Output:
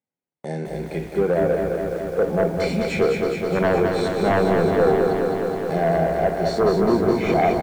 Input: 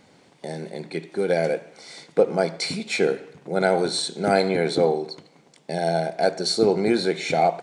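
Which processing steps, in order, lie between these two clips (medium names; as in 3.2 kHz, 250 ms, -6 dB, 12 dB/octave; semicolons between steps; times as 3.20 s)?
high-pass 65 Hz 24 dB/octave; peaking EQ 4.3 kHz -9 dB 0.73 oct; low-pass that closes with the level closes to 1 kHz, closed at -17.5 dBFS; harmonic-percussive split percussive -9 dB; sine folder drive 9 dB, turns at -7.5 dBFS; gate -32 dBFS, range -42 dB; on a send: frequency-shifting echo 226 ms, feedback 32%, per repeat -100 Hz, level -12 dB; on the sum: bit-crushed delay 209 ms, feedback 80%, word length 7-bit, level -5 dB; trim -6.5 dB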